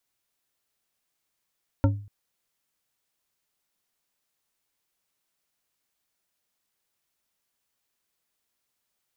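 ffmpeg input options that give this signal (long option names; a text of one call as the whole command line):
ffmpeg -f lavfi -i "aevalsrc='0.178*pow(10,-3*t/0.46)*sin(2*PI*102*t)+0.112*pow(10,-3*t/0.226)*sin(2*PI*281.2*t)+0.0708*pow(10,-3*t/0.141)*sin(2*PI*551.2*t)+0.0447*pow(10,-3*t/0.099)*sin(2*PI*911.2*t)+0.0282*pow(10,-3*t/0.075)*sin(2*PI*1360.7*t)':duration=0.24:sample_rate=44100" out.wav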